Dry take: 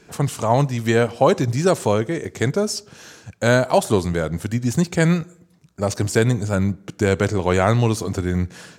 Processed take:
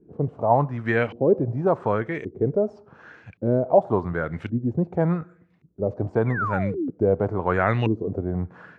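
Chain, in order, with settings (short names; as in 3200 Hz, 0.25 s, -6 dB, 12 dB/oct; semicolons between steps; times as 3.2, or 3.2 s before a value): painted sound fall, 6.26–6.9, 240–2400 Hz -26 dBFS; LFO low-pass saw up 0.89 Hz 300–2700 Hz; gain -6 dB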